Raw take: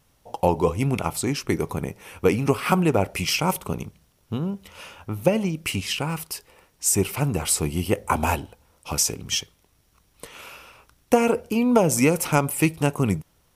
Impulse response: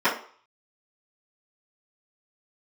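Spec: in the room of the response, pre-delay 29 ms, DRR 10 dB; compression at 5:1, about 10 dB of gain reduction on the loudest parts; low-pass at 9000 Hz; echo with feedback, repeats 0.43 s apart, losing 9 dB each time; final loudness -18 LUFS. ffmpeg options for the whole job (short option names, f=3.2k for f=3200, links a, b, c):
-filter_complex "[0:a]lowpass=9k,acompressor=threshold=-24dB:ratio=5,aecho=1:1:430|860|1290|1720:0.355|0.124|0.0435|0.0152,asplit=2[a][b];[1:a]atrim=start_sample=2205,adelay=29[c];[b][c]afir=irnorm=-1:irlink=0,volume=-28dB[d];[a][d]amix=inputs=2:normalize=0,volume=11dB"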